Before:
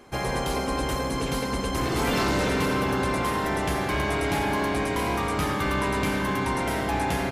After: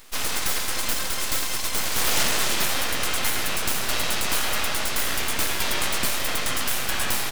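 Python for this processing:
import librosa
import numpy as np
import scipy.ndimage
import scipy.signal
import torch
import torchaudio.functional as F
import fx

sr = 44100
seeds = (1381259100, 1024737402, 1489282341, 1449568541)

y = scipy.signal.sosfilt(scipy.signal.butter(4, 130.0, 'highpass', fs=sr, output='sos'), x)
y = fx.tilt_eq(y, sr, slope=4.0)
y = np.abs(y)
y = y * 10.0 ** (3.5 / 20.0)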